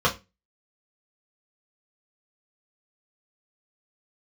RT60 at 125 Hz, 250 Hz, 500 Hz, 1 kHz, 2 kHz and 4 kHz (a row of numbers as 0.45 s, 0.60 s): 0.35 s, 0.35 s, 0.25 s, 0.20 s, 0.25 s, 0.20 s